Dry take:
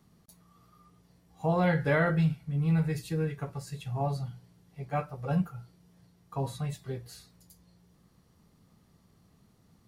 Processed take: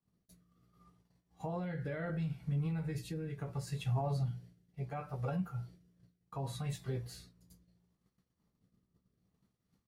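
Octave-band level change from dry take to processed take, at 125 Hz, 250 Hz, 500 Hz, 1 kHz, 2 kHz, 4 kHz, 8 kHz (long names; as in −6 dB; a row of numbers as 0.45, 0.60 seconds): −6.0, −9.0, −10.5, −10.0, −14.5, −4.5, −3.5 decibels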